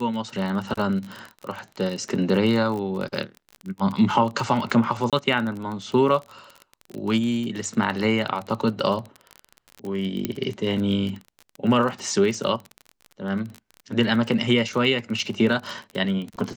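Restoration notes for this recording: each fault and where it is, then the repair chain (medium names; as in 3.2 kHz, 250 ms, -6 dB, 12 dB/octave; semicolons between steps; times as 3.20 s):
crackle 30 per s -28 dBFS
5.10–5.13 s: dropout 27 ms
10.25 s: pop -11 dBFS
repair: de-click; interpolate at 5.10 s, 27 ms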